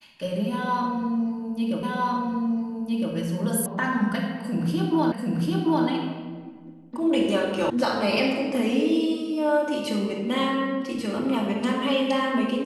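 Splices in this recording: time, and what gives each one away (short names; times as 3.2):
1.83 repeat of the last 1.31 s
3.66 sound cut off
5.12 repeat of the last 0.74 s
7.7 sound cut off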